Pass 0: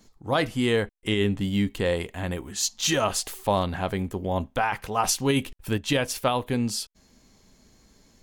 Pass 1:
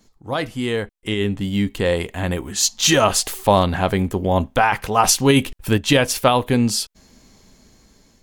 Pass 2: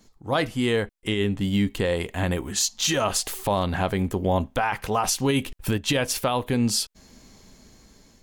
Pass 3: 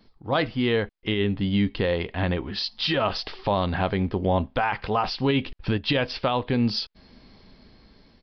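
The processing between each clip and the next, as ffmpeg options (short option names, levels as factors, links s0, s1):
-af "dynaudnorm=f=740:g=5:m=3.76"
-af "alimiter=limit=0.237:level=0:latency=1:release=336"
-af "aresample=11025,aresample=44100"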